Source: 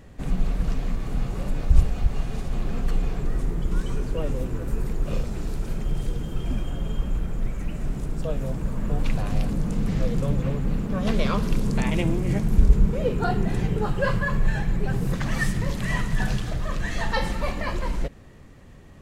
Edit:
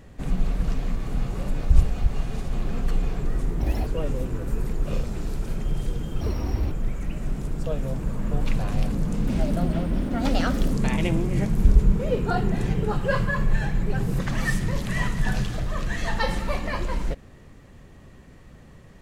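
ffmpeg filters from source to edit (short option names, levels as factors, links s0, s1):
-filter_complex "[0:a]asplit=7[s0][s1][s2][s3][s4][s5][s6];[s0]atrim=end=3.604[s7];[s1]atrim=start=3.6:end=4.07,asetpts=PTS-STARTPTS,asetrate=77175,aresample=44100[s8];[s2]atrim=start=4.066:end=6.414[s9];[s3]atrim=start=6.41:end=7.3,asetpts=PTS-STARTPTS,asetrate=77175,aresample=44100[s10];[s4]atrim=start=7.296:end=9.854[s11];[s5]atrim=start=9.85:end=11.67,asetpts=PTS-STARTPTS,asetrate=54684,aresample=44100,atrim=end_sample=64727,asetpts=PTS-STARTPTS[s12];[s6]atrim=start=11.666[s13];[s7][s8]acrossfade=d=0.004:c1=hsin:c2=hsin[s14];[s14][s9]acrossfade=d=0.004:c1=hsin:c2=hsin[s15];[s15][s10]acrossfade=d=0.004:c1=hsin:c2=hsin[s16];[s16][s11]acrossfade=d=0.004:c1=hsin:c2=hsin[s17];[s17][s12]acrossfade=d=0.004:c1=hsin:c2=hsin[s18];[s18][s13]acrossfade=d=0.004:c1=hsin:c2=hsin"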